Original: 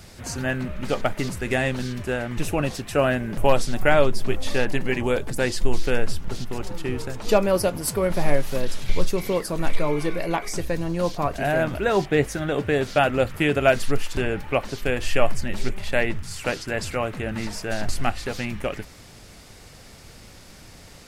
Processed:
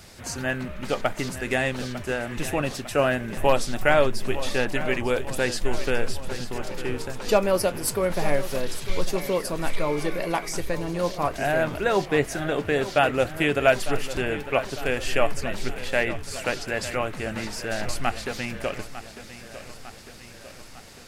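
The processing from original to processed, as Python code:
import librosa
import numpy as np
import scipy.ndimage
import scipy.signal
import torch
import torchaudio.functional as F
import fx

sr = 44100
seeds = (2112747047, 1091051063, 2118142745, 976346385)

p1 = fx.low_shelf(x, sr, hz=290.0, db=-5.5)
y = p1 + fx.echo_feedback(p1, sr, ms=901, feedback_pct=58, wet_db=-13.5, dry=0)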